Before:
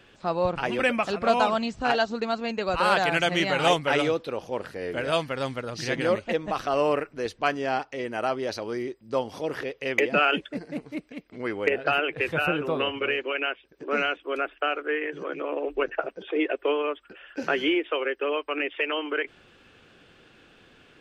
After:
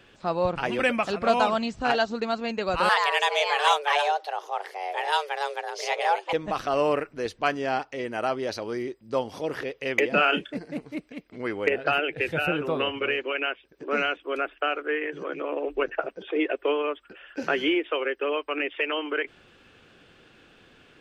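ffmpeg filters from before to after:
-filter_complex "[0:a]asettb=1/sr,asplit=3[s0][s1][s2];[s0]atrim=end=2.894[s3];[s1]atrim=start=2.89:end=6.33,asetpts=PTS-STARTPTS,afade=t=in:d=0.004:c=qsin,afade=t=out:st=3.436:d=0.004:c=qsin,afreqshift=290[s4];[s2]atrim=start=6.326[s5];[s3][s4]acrossfade=d=0.004:c1=hsin:c2=qsin[s6];[s6][s5]acrossfade=d=0.004:c1=qsin:c2=hsin,asettb=1/sr,asplit=3[s7][s8][s9];[s7]atrim=end=10.084[s10];[s8]atrim=start=10.08:end=10.57,asetpts=PTS-STARTPTS,afade=t=in:d=0.004:c=qsin,afade=t=out:st=0.486:d=0.004:c=qsin,asplit=2[s11][s12];[s12]adelay=32,volume=0.316[s13];[s11][s13]amix=inputs=2:normalize=0,atrim=end_sample=21609[s14];[s9]atrim=start=10.566[s15];[s10][s14]acrossfade=d=0.004:c1=hsin:c2=qsin[s16];[s16][s15]acrossfade=d=0.004:c1=qsin:c2=hsin,asettb=1/sr,asplit=3[s17][s18][s19];[s17]atrim=end=11.984[s20];[s18]atrim=start=11.98:end=12.52,asetpts=PTS-STARTPTS,afade=t=in:d=0.004:c=qsin,afade=t=out:st=0.536:d=0.004:c=qsin,equalizer=f=1100:w=5.3:g=-15[s21];[s19]atrim=start=12.516[s22];[s20][s21]acrossfade=d=0.004:c1=hsin:c2=qsin[s23];[s23][s22]acrossfade=d=0.004:c1=qsin:c2=hsin"

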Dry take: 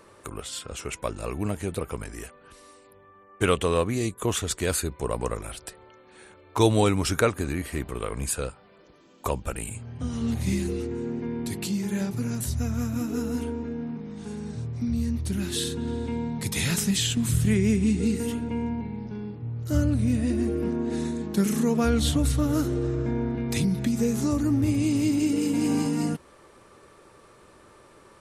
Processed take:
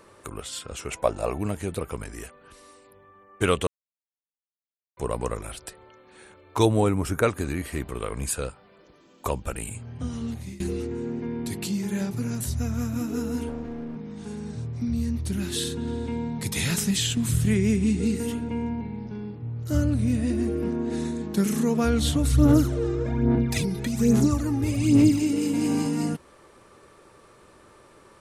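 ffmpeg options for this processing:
-filter_complex "[0:a]asettb=1/sr,asplit=3[s0][s1][s2];[s0]atrim=end=0.914[s3];[s1]atrim=start=0.91:end=1.38,asetpts=PTS-STARTPTS,afade=t=in:d=0.004:c=qsin,afade=t=out:st=0.466:d=0.004:c=qsin,equalizer=f=690:t=o:w=0.9:g=12[s4];[s2]atrim=start=1.376[s5];[s3][s4]acrossfade=d=0.004:c1=hsin:c2=qsin[s6];[s6][s5]acrossfade=d=0.004:c1=qsin:c2=hsin,asettb=1/sr,asplit=3[s7][s8][s9];[s7]atrim=end=6.654[s10];[s8]atrim=start=6.65:end=7.23,asetpts=PTS-STARTPTS,afade=t=in:d=0.004:c=qsin,afade=t=out:st=0.576:d=0.004:c=qsin,equalizer=f=4200:w=0.75:g=-13.5[s11];[s9]atrim=start=7.226[s12];[s10][s11]acrossfade=d=0.004:c1=hsin:c2=qsin[s13];[s13][s12]acrossfade=d=0.004:c1=qsin:c2=hsin,asettb=1/sr,asplit=3[s14][s15][s16];[s14]atrim=end=13.494[s17];[s15]atrim=start=13.49:end=13.96,asetpts=PTS-STARTPTS,afade=t=in:d=0.004:c=qsin,afade=t=out:st=0.466:d=0.004:c=qsin,aeval=exprs='clip(val(0),-1,0.0141)':c=same[s18];[s16]atrim=start=13.956[s19];[s17][s18]acrossfade=d=0.004:c1=hsin:c2=qsin[s20];[s20][s19]acrossfade=d=0.004:c1=qsin:c2=hsin,asplit=3[s21][s22][s23];[s21]afade=t=out:st=22.31:d=0.02[s24];[s22]aphaser=in_gain=1:out_gain=1:delay=2.5:decay=0.62:speed=1.2:type=sinusoidal,afade=t=in:st=22.31:d=0.02,afade=t=out:st=25.2:d=0.02[s25];[s23]afade=t=in:st=25.2:d=0.02[s26];[s24][s25][s26]amix=inputs=3:normalize=0,asplit=4[s27][s28][s29][s30];[s27]atrim=end=3.67,asetpts=PTS-STARTPTS,afade=t=out:st=3.666:d=0.004:c=hsin[s31];[s28]atrim=start=3.67:end=4.97,asetpts=PTS-STARTPTS,volume=0[s32];[s29]atrim=start=4.97:end=10.6,asetpts=PTS-STARTPTS,afade=t=in:d=0.004:c=hsin,afade=t=out:st=5.05:d=0.58:silence=0.0891251[s33];[s30]atrim=start=10.6,asetpts=PTS-STARTPTS,afade=t=in:d=0.004:c=hsin:silence=0.0891251[s34];[s31][s32][s33][s34]concat=n=4:v=0:a=1"

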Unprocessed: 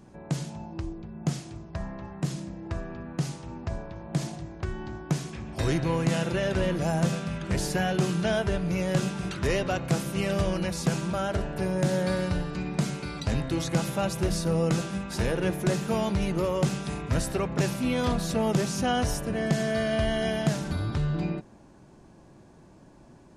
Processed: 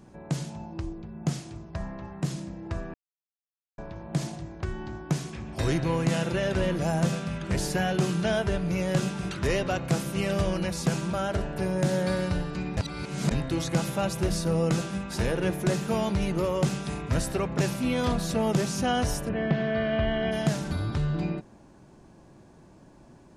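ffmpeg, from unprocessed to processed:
-filter_complex "[0:a]asplit=3[s0][s1][s2];[s0]afade=t=out:st=19.28:d=0.02[s3];[s1]lowpass=f=3200:w=0.5412,lowpass=f=3200:w=1.3066,afade=t=in:st=19.28:d=0.02,afade=t=out:st=20.31:d=0.02[s4];[s2]afade=t=in:st=20.31:d=0.02[s5];[s3][s4][s5]amix=inputs=3:normalize=0,asplit=5[s6][s7][s8][s9][s10];[s6]atrim=end=2.94,asetpts=PTS-STARTPTS,afade=t=out:st=2.936:d=0.004:c=hsin[s11];[s7]atrim=start=2.94:end=3.78,asetpts=PTS-STARTPTS,volume=0[s12];[s8]atrim=start=3.78:end=12.772,asetpts=PTS-STARTPTS,afade=t=in:d=0.004:c=hsin[s13];[s9]atrim=start=12.768:end=13.312,asetpts=PTS-STARTPTS,areverse[s14];[s10]atrim=start=13.308[s15];[s11][s12][s13]concat=n=3:v=0:a=1[s16];[s16][s14]acrossfade=d=0.004:c1=hsin:c2=hsin[s17];[s17][s15]acrossfade=d=0.004:c1=hsin:c2=hsin"

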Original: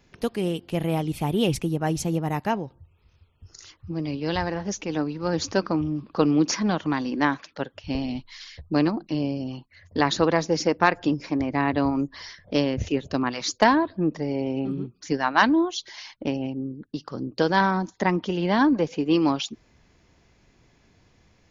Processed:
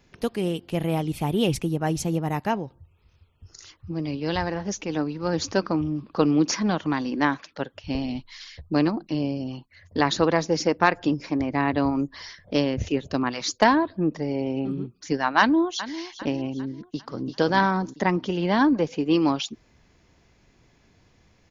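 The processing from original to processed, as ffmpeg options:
-filter_complex "[0:a]asplit=2[s0][s1];[s1]afade=t=in:st=15.39:d=0.01,afade=t=out:st=16.01:d=0.01,aecho=0:1:400|800|1200|1600:0.199526|0.0897868|0.0404041|0.0181818[s2];[s0][s2]amix=inputs=2:normalize=0,asplit=2[s3][s4];[s4]afade=t=in:st=16.74:d=0.01,afade=t=out:st=17.25:d=0.01,aecho=0:1:340|680|1020|1360|1700|2040:0.530884|0.265442|0.132721|0.0663606|0.0331803|0.0165901[s5];[s3][s5]amix=inputs=2:normalize=0"

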